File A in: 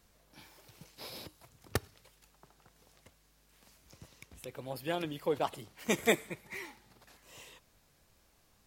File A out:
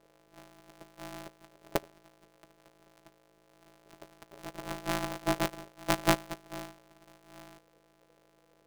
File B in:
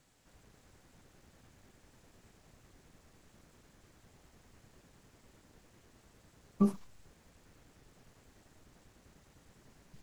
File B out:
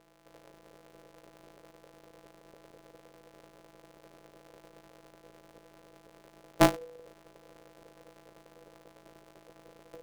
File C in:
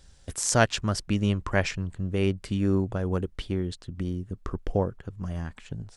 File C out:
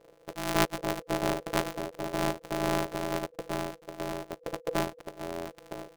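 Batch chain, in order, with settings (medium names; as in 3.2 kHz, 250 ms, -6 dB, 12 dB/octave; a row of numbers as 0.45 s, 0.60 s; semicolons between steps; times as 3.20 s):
sorted samples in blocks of 256 samples; ring modulator 490 Hz; peak normalisation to -9 dBFS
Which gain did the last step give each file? +5.0 dB, +8.5 dB, -2.0 dB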